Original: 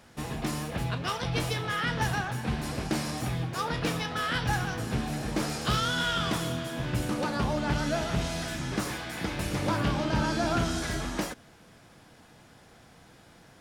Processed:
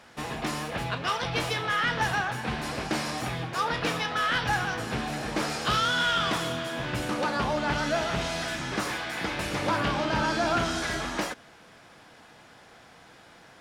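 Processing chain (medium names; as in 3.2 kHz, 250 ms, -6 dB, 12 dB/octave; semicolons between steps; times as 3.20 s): overdrive pedal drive 11 dB, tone 3.7 kHz, clips at -13.5 dBFS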